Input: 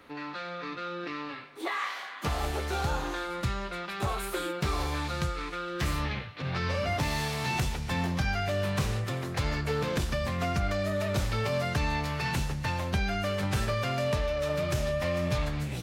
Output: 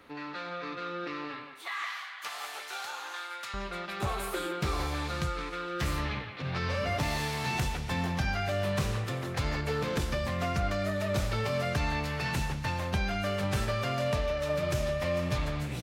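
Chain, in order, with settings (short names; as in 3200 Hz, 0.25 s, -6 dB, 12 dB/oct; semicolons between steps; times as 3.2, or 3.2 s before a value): 1.54–3.54 HPF 1200 Hz 12 dB/oct; speakerphone echo 0.17 s, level -7 dB; gain -1.5 dB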